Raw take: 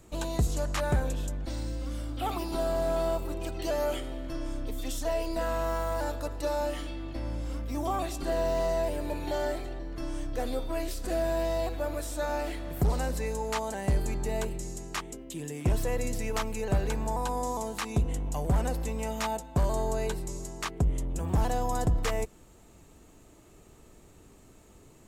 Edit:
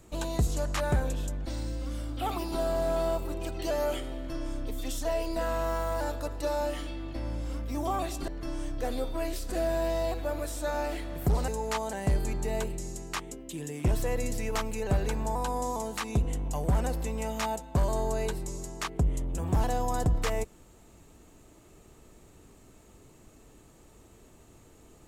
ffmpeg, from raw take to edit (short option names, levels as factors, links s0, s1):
-filter_complex "[0:a]asplit=3[s0][s1][s2];[s0]atrim=end=8.282[s3];[s1]atrim=start=9.828:end=13.032[s4];[s2]atrim=start=13.288[s5];[s3][s4]acrossfade=d=0.004:c1=hsin:c2=hsin[s6];[s6][s5]acrossfade=d=0.004:c1=hsin:c2=hsin"